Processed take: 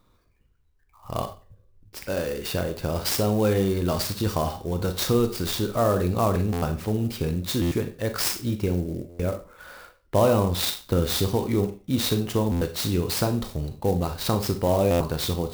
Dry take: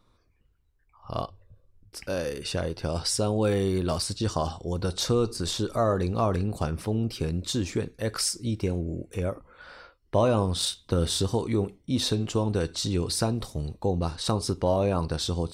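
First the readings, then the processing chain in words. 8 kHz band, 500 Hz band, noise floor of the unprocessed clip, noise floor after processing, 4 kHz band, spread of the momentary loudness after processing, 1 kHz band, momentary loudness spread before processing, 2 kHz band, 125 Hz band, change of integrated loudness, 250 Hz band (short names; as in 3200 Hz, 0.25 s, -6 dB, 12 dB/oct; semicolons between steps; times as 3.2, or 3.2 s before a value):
+0.5 dB, +3.0 dB, -66 dBFS, -62 dBFS, +1.0 dB, 8 LU, +2.5 dB, 8 LU, +4.0 dB, +2.5 dB, +2.5 dB, +3.0 dB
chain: Schroeder reverb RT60 0.34 s, combs from 30 ms, DRR 7.5 dB; stuck buffer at 6.52/7.61/9.09/12.51/14.9, samples 512, times 8; clock jitter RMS 0.029 ms; gain +2 dB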